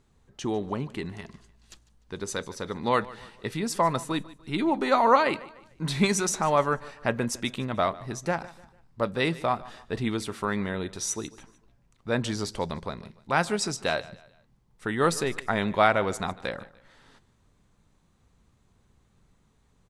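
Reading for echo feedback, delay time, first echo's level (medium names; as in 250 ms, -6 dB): 38%, 149 ms, -19.5 dB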